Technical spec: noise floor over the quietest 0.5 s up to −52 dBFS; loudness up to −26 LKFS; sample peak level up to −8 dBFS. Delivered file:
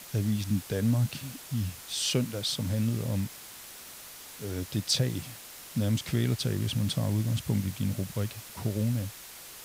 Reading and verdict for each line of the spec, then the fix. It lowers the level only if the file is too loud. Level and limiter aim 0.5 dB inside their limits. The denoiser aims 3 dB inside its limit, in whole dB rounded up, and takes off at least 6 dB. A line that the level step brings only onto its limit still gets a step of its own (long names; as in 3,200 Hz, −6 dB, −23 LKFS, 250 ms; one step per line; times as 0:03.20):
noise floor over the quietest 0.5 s −46 dBFS: out of spec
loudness −30.5 LKFS: in spec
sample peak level −14.5 dBFS: in spec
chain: broadband denoise 9 dB, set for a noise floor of −46 dBFS